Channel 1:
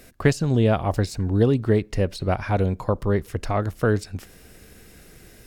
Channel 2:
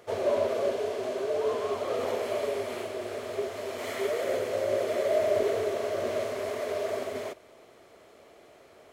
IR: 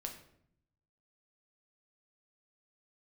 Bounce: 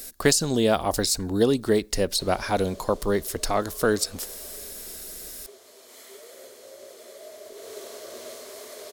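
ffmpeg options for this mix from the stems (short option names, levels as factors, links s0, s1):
-filter_complex "[0:a]volume=1.12[s0];[1:a]equalizer=f=660:w=2.5:g=-4.5,adelay=2100,volume=0.282,afade=t=in:st=7.55:d=0.22:silence=0.421697,asplit=2[s1][s2];[s2]volume=0.631[s3];[2:a]atrim=start_sample=2205[s4];[s3][s4]afir=irnorm=-1:irlink=0[s5];[s0][s1][s5]amix=inputs=3:normalize=0,equalizer=f=110:t=o:w=1.1:g=-14.5,aexciter=amount=4.4:drive=4.1:freq=3600"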